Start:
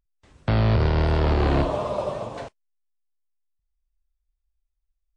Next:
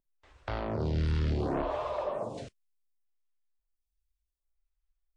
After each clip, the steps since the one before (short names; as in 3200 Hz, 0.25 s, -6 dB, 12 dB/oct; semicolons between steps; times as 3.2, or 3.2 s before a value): in parallel at -2 dB: compressor, threshold -30 dBFS, peak gain reduction 13.5 dB; on the sum: soft clip -14 dBFS, distortion -18 dB; photocell phaser 0.68 Hz; gain -6 dB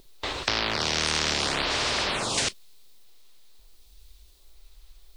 fifteen-band EQ 400 Hz +6 dB, 1600 Hz -4 dB, 4000 Hz +10 dB; spectral compressor 10:1; gain +9 dB